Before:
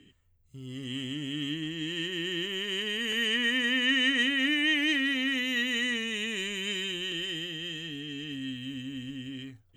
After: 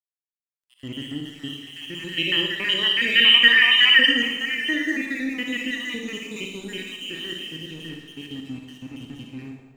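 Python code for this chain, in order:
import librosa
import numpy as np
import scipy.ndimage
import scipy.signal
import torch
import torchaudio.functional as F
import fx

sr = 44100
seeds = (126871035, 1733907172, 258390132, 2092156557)

p1 = fx.spec_dropout(x, sr, seeds[0], share_pct=66)
p2 = fx.high_shelf(p1, sr, hz=2200.0, db=-5.0)
p3 = fx.spec_box(p2, sr, start_s=2.18, length_s=1.88, low_hz=500.0, high_hz=5700.0, gain_db=12)
p4 = p3 + fx.echo_bbd(p3, sr, ms=382, stages=2048, feedback_pct=79, wet_db=-16, dry=0)
p5 = np.sign(p4) * np.maximum(np.abs(p4) - 10.0 ** (-54.5 / 20.0), 0.0)
p6 = fx.rev_schroeder(p5, sr, rt60_s=0.91, comb_ms=38, drr_db=2.0)
y = p6 * librosa.db_to_amplitude(6.0)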